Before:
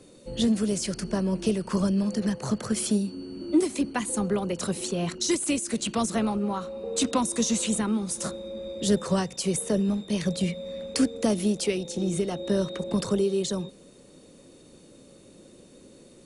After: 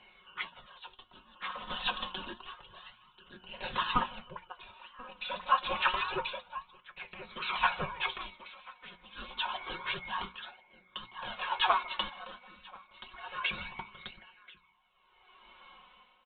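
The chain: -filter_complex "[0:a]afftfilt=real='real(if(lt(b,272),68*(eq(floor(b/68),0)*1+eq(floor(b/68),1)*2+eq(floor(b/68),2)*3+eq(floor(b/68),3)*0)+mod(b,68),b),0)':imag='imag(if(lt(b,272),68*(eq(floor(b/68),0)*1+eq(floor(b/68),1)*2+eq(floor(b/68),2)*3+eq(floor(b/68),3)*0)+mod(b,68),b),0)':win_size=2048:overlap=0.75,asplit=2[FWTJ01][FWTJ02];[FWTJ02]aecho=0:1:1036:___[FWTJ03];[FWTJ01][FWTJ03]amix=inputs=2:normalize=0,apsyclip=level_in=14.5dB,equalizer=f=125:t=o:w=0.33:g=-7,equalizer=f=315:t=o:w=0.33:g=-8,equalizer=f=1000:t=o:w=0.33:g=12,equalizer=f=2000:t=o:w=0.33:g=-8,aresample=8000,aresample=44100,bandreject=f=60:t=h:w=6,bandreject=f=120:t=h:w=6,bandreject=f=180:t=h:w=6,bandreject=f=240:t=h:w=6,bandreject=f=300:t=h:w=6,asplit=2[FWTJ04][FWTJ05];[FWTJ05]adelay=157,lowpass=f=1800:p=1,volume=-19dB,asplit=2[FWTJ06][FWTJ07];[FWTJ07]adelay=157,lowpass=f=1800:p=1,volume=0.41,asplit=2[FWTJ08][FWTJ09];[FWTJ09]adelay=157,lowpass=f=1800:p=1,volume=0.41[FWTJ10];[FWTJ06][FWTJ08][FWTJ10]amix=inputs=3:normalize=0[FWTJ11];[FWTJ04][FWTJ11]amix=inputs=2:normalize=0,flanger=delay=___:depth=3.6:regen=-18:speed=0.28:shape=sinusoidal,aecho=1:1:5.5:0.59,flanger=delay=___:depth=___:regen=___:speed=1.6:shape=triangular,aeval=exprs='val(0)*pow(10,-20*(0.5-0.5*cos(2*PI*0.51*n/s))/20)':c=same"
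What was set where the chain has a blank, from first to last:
0.631, 0.4, 7.5, 3.5, 65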